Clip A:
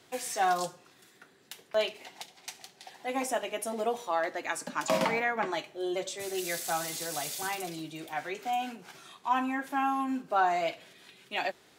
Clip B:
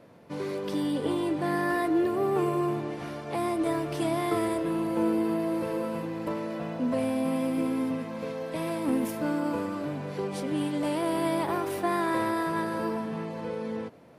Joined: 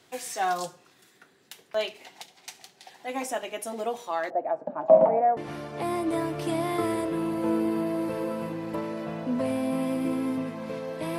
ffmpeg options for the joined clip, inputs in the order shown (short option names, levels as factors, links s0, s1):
-filter_complex "[0:a]asettb=1/sr,asplit=3[s0][s1][s2];[s0]atrim=end=4.304[s3];[s1]atrim=start=4.3:end=5.37,asetpts=PTS-STARTPTS,afade=t=in:d=0.004:c=qsin,afade=t=out:st=1.066:d=0.004:c=qsin,lowpass=f=670:t=q:w=5.5[s4];[s2]atrim=start=5.366[s5];[s3][s4]acrossfade=d=0.004:c1=hsin:c2=qsin[s6];[s6][s5]acrossfade=d=0.004:c1=qsin:c2=hsin,apad=whole_dur=11.18,atrim=end=11.18,atrim=end=5.372[s7];[1:a]atrim=start=2.898:end=8.71[s8];[s7][s8]acrossfade=d=0.004:c1=hsin:c2=hsin"